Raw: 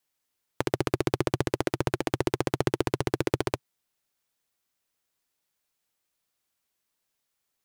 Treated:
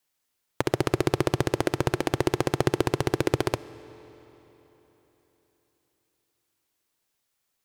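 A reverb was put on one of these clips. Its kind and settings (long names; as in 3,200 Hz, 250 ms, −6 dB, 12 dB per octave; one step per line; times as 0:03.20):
comb and all-pass reverb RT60 4 s, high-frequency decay 0.85×, pre-delay 15 ms, DRR 17 dB
level +2.5 dB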